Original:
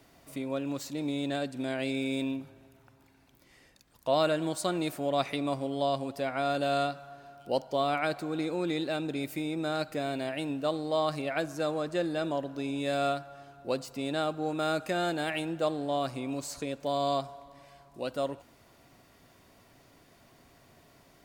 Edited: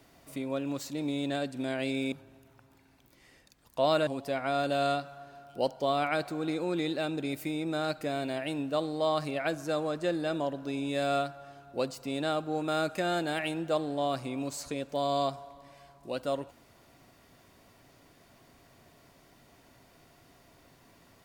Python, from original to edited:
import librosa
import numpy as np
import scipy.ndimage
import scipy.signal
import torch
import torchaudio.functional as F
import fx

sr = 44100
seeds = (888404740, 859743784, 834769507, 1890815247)

y = fx.edit(x, sr, fx.cut(start_s=2.12, length_s=0.29),
    fx.cut(start_s=4.36, length_s=1.62), tone=tone)